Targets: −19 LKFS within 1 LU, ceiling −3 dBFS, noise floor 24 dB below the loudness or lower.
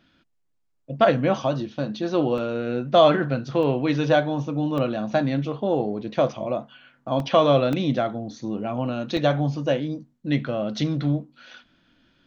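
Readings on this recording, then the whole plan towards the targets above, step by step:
number of dropouts 6; longest dropout 1.4 ms; integrated loudness −23.5 LKFS; sample peak −4.5 dBFS; target loudness −19.0 LKFS
→ repair the gap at 0:02.38/0:03.63/0:04.78/0:07.20/0:07.73/0:09.17, 1.4 ms
level +4.5 dB
brickwall limiter −3 dBFS

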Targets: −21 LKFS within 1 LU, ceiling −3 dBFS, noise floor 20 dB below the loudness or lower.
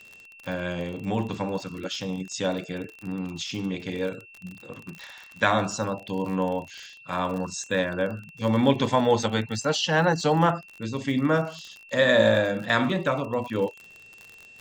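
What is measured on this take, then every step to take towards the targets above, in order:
crackle rate 42 per second; interfering tone 2,700 Hz; level of the tone −47 dBFS; integrated loudness −26.0 LKFS; sample peak −5.5 dBFS; target loudness −21.0 LKFS
→ click removal
notch filter 2,700 Hz, Q 30
level +5 dB
brickwall limiter −3 dBFS

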